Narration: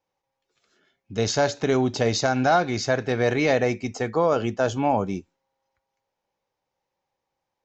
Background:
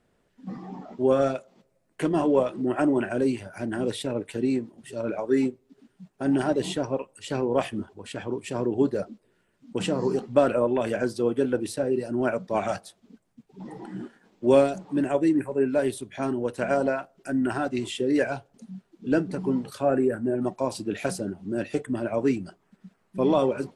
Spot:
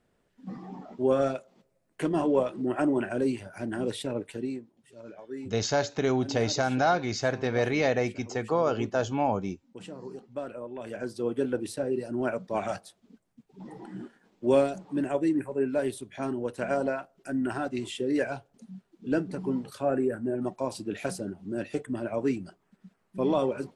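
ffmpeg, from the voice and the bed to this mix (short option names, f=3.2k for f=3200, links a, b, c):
-filter_complex "[0:a]adelay=4350,volume=-4.5dB[a];[1:a]volume=9dB,afade=t=out:st=4.21:d=0.45:silence=0.223872,afade=t=in:st=10.72:d=0.67:silence=0.251189[b];[a][b]amix=inputs=2:normalize=0"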